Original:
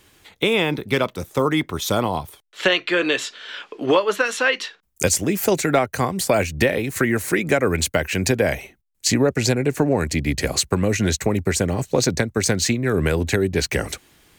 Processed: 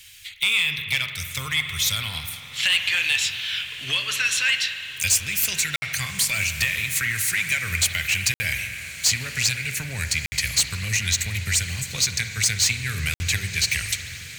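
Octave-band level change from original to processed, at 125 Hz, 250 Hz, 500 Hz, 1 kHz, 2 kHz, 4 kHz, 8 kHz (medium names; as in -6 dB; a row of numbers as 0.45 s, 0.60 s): -6.0 dB, -19.5 dB, -26.5 dB, -14.0 dB, +1.5 dB, +4.0 dB, +3.0 dB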